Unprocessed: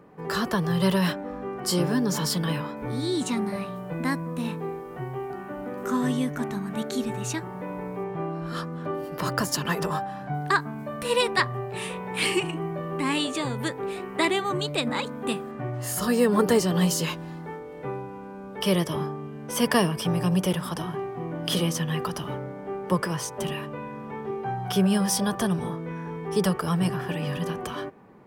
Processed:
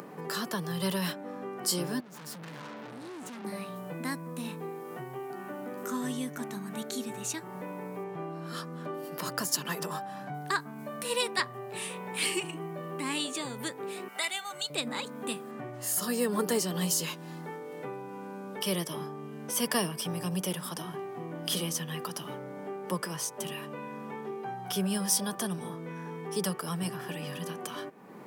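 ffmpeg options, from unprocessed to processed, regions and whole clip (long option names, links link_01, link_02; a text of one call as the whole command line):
ffmpeg -i in.wav -filter_complex "[0:a]asettb=1/sr,asplit=3[link_01][link_02][link_03];[link_01]atrim=end=2.004[link_04];[link_02]atrim=start=2:end=3.45,asetpts=PTS-STARTPTS,afade=type=in:duration=0.004:curve=qsin,afade=type=out:start_time=1.446:duration=0.004:curve=qsin,highshelf=frequency=2300:width_type=q:width=1.5:gain=-11,acompressor=threshold=-30dB:ratio=2.5:attack=3.2:release=140:knee=1:detection=peak,aeval=exprs='(tanh(112*val(0)+0.65)-tanh(0.65))/112':channel_layout=same[link_05];[link_03]atrim=start=3.446[link_06];[link_04][link_05]acrossfade=duration=0.004:curve1=hsin:curve2=qsin[link_07];[link_07][link_06]acrossfade=duration=0.004:curve1=qsin:curve2=hsin,asettb=1/sr,asplit=3[link_08][link_09][link_10];[link_08]atrim=end=14.084[link_11];[link_09]atrim=start=14.08:end=14.7,asetpts=PTS-STARTPTS,afade=type=in:duration=0.004:curve=qsin,afade=type=out:start_time=0.616:duration=0.004:curve=qsin,highpass=frequency=1400:poles=1,aecho=1:1:1.4:0.63,atrim=end_sample=27342[link_12];[link_10]atrim=start=14.696[link_13];[link_11][link_12]acrossfade=duration=0.004:curve1=hsin:curve2=qsin[link_14];[link_14][link_13]acrossfade=duration=0.004:curve1=qsin:curve2=hsin,highshelf=frequency=4300:gain=11,acompressor=mode=upward:threshold=-24dB:ratio=2.5,highpass=frequency=150:width=0.5412,highpass=frequency=150:width=1.3066,volume=-8.5dB" out.wav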